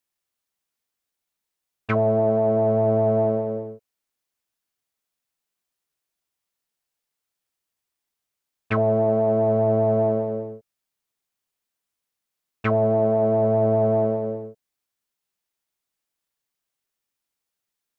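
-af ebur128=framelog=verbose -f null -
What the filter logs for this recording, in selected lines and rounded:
Integrated loudness:
  I:         -21.2 LUFS
  Threshold: -32.0 LUFS
Loudness range:
  LRA:         7.5 LU
  Threshold: -44.8 LUFS
  LRA low:   -30.5 LUFS
  LRA high:  -23.0 LUFS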